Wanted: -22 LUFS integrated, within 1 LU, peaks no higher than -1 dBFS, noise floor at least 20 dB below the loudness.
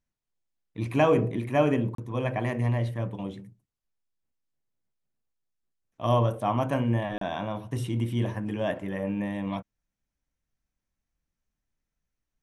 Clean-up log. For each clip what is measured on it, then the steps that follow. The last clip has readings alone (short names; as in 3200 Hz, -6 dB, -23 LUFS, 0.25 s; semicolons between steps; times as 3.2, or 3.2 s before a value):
dropouts 2; longest dropout 33 ms; loudness -28.0 LUFS; peak -9.5 dBFS; loudness target -22.0 LUFS
-> interpolate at 1.95/7.18, 33 ms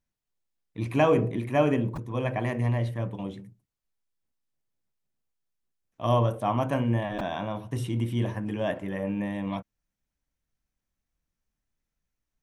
dropouts 0; loudness -28.0 LUFS; peak -9.5 dBFS; loudness target -22.0 LUFS
-> gain +6 dB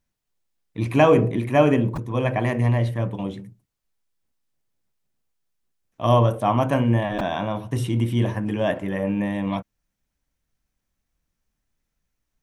loudness -22.0 LUFS; peak -3.5 dBFS; noise floor -80 dBFS